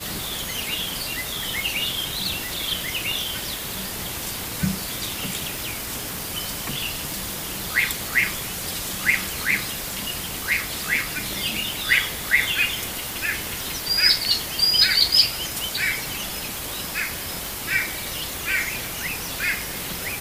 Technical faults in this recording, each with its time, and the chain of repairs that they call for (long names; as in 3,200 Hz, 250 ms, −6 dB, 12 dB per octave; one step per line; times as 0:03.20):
surface crackle 55 per second −29 dBFS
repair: click removal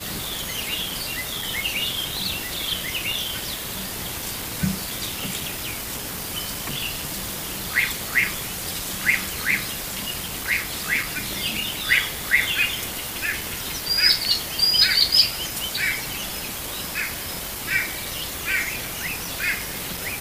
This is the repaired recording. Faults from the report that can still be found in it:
none of them is left